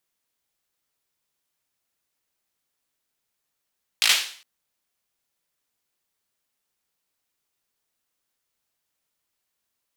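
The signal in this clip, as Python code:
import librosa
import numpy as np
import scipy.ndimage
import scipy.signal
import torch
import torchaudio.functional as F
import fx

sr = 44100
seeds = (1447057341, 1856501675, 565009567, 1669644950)

y = fx.drum_clap(sr, seeds[0], length_s=0.41, bursts=5, spacing_ms=18, hz=3100.0, decay_s=0.48)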